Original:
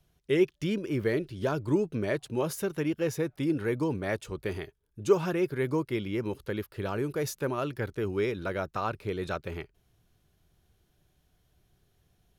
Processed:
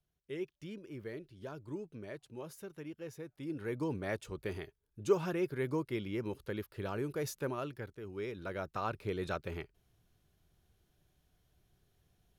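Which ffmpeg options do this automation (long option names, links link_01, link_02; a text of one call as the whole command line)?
ffmpeg -i in.wav -af "volume=5.5dB,afade=type=in:start_time=3.35:duration=0.57:silence=0.316228,afade=type=out:start_time=7.48:duration=0.52:silence=0.334965,afade=type=in:start_time=8:duration=1.02:silence=0.266073" out.wav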